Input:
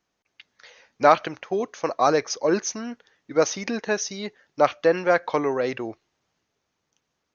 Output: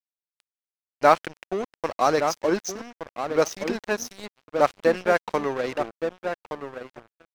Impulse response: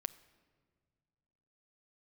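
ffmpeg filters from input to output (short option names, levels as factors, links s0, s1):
-filter_complex "[0:a]asplit=2[s0][s1];[s1]adelay=1170,lowpass=f=960:p=1,volume=0.562,asplit=2[s2][s3];[s3]adelay=1170,lowpass=f=960:p=1,volume=0.24,asplit=2[s4][s5];[s5]adelay=1170,lowpass=f=960:p=1,volume=0.24[s6];[s0][s2][s4][s6]amix=inputs=4:normalize=0,aeval=exprs='sgn(val(0))*max(abs(val(0))-0.0266,0)':c=same"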